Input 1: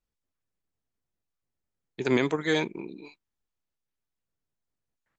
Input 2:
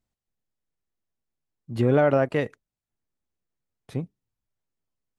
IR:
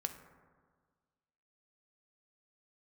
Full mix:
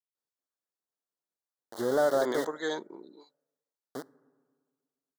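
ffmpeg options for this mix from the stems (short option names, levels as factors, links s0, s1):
-filter_complex "[0:a]adelay=150,volume=0.631[s0];[1:a]aeval=exprs='val(0)*gte(abs(val(0)),0.0422)':c=same,volume=0.531,asplit=2[s1][s2];[s2]volume=0.299[s3];[2:a]atrim=start_sample=2205[s4];[s3][s4]afir=irnorm=-1:irlink=0[s5];[s0][s1][s5]amix=inputs=3:normalize=0,highpass=390,asoftclip=type=hard:threshold=0.112,asuperstop=centerf=2500:order=4:qfactor=1.4"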